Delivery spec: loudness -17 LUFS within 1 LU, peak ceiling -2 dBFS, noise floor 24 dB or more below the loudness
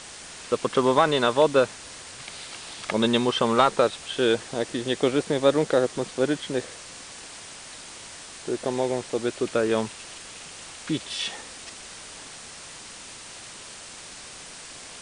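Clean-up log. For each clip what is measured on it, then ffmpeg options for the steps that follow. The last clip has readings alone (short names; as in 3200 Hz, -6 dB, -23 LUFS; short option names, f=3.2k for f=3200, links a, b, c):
noise floor -42 dBFS; noise floor target -49 dBFS; loudness -24.5 LUFS; peak -6.0 dBFS; loudness target -17.0 LUFS
-> -af "afftdn=nr=7:nf=-42"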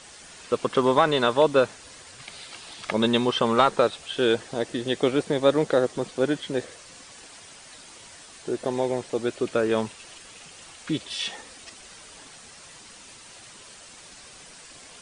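noise floor -47 dBFS; noise floor target -49 dBFS
-> -af "afftdn=nr=6:nf=-47"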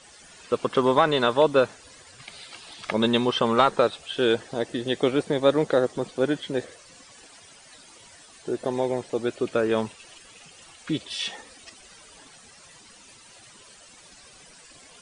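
noise floor -51 dBFS; loudness -24.5 LUFS; peak -6.0 dBFS; loudness target -17.0 LUFS
-> -af "volume=7.5dB,alimiter=limit=-2dB:level=0:latency=1"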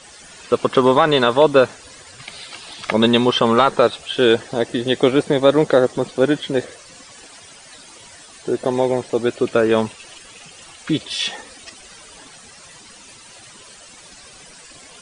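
loudness -17.5 LUFS; peak -2.0 dBFS; noise floor -43 dBFS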